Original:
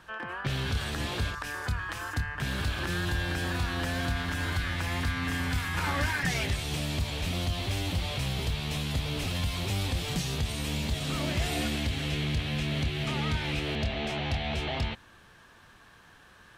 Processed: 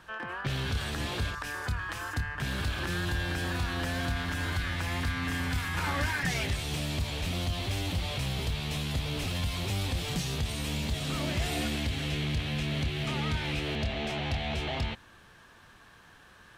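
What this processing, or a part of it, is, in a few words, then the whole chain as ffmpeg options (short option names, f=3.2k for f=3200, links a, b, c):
parallel distortion: -filter_complex "[0:a]asplit=2[a][b];[b]asoftclip=type=hard:threshold=-35dB,volume=-11.5dB[c];[a][c]amix=inputs=2:normalize=0,volume=-2dB"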